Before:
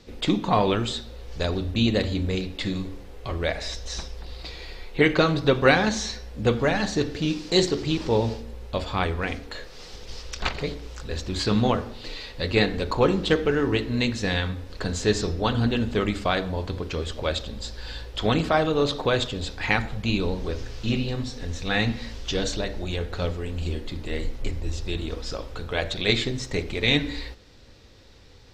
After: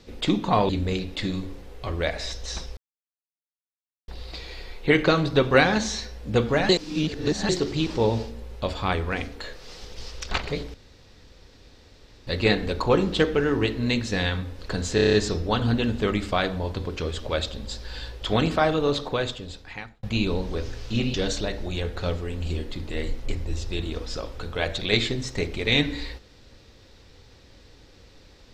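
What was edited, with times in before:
0.69–2.11 cut
4.19 insert silence 1.31 s
6.8–7.6 reverse
10.85–12.38 room tone
15.06 stutter 0.03 s, 7 plays
18.69–19.96 fade out
21.07–22.3 cut

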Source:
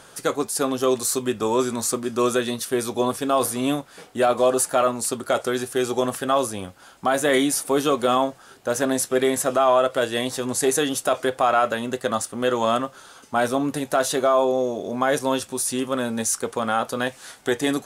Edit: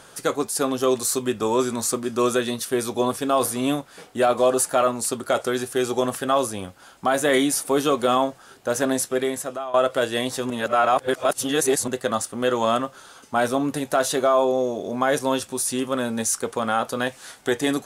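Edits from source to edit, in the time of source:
8.92–9.74 fade out linear, to -18 dB
10.5–11.88 reverse

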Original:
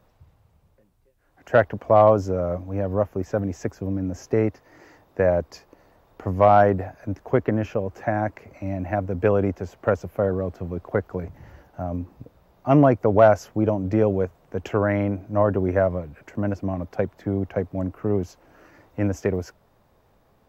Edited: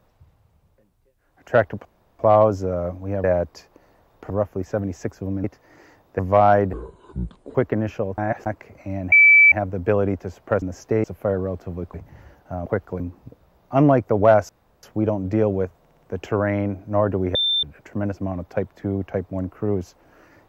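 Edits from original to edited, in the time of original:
1.85 insert room tone 0.34 s
4.04–4.46 move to 9.98
5.21–6.27 move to 2.9
6.81–7.31 speed 61%
7.94–8.22 reverse
8.88 add tone 2310 Hz -8 dBFS 0.40 s
10.88–11.22 move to 11.94
13.43 insert room tone 0.34 s
14.4 stutter 0.06 s, 4 plays
15.77–16.05 bleep 3570 Hz -17.5 dBFS

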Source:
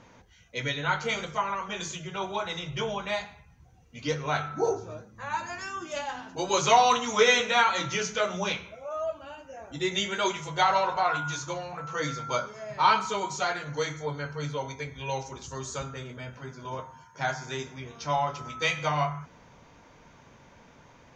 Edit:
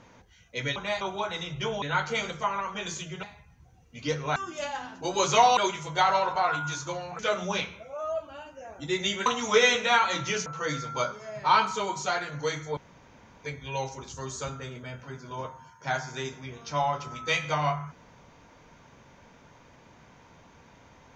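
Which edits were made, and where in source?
0.76–2.17 swap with 2.98–3.23
4.36–5.7 cut
6.91–8.11 swap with 10.18–11.8
14.11–14.78 room tone

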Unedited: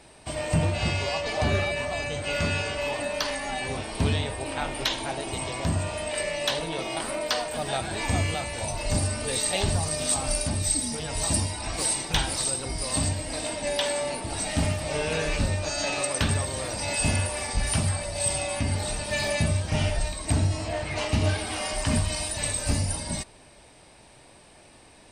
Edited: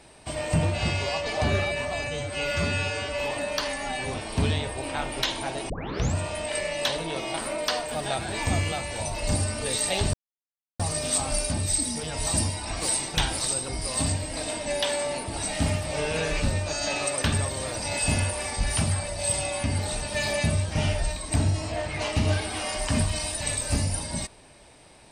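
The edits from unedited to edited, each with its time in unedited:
2.07–2.82 stretch 1.5×
5.32 tape start 0.46 s
9.76 insert silence 0.66 s

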